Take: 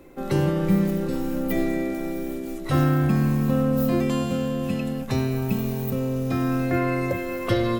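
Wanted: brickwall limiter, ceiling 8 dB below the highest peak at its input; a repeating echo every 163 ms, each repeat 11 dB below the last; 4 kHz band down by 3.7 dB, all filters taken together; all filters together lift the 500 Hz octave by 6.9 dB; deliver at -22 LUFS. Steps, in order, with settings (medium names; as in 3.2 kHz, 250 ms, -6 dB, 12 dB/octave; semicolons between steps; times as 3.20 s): peaking EQ 500 Hz +8.5 dB; peaking EQ 4 kHz -5 dB; peak limiter -14.5 dBFS; feedback delay 163 ms, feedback 28%, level -11 dB; trim +1.5 dB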